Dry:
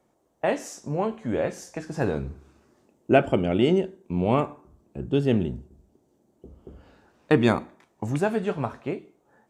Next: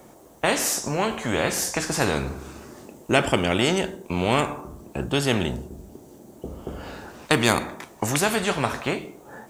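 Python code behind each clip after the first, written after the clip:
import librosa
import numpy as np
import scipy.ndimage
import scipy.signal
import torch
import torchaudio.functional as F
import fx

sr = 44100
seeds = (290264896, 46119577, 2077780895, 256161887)

y = fx.high_shelf(x, sr, hz=9100.0, db=9.5)
y = fx.spectral_comp(y, sr, ratio=2.0)
y = y * 10.0 ** (1.0 / 20.0)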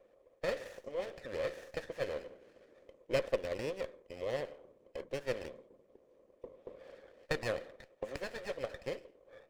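y = fx.hpss(x, sr, part='harmonic', gain_db=-13)
y = fx.vowel_filter(y, sr, vowel='e')
y = fx.running_max(y, sr, window=9)
y = y * 10.0 ** (-1.5 / 20.0)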